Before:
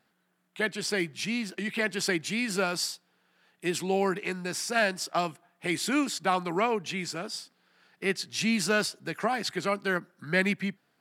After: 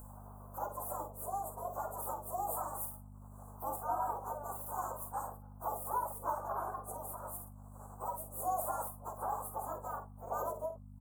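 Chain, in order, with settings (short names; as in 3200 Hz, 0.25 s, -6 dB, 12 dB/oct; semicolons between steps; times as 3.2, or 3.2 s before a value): pitch shift by moving bins +8.5 st; spectral gate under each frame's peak -15 dB weak; inverse Chebyshev band-stop 1900–5100 Hz, stop band 50 dB; three-band isolator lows -21 dB, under 580 Hz, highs -14 dB, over 2500 Hz; upward compressor, threshold -56 dBFS; hum 50 Hz, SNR 10 dB; doubler 49 ms -9 dB; ending taper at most 150 dB/s; gain +17 dB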